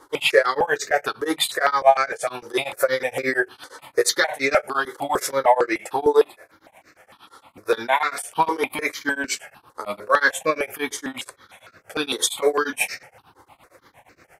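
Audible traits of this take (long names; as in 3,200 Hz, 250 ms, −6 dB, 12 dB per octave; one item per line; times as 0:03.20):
tremolo triangle 8.6 Hz, depth 100%
notches that jump at a steady rate 6.6 Hz 670–3,200 Hz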